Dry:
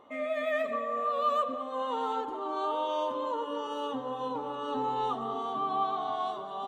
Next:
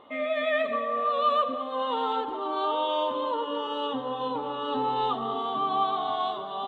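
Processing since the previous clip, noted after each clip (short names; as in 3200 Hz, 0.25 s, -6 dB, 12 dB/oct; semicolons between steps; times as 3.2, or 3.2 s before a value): resonant high shelf 4600 Hz -8.5 dB, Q 3; gain +3.5 dB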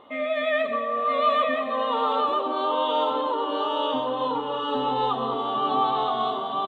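echo 0.973 s -3.5 dB; gain +2 dB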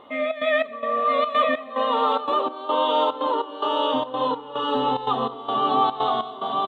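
step gate "xxx.xx..x" 145 bpm -12 dB; gain +3 dB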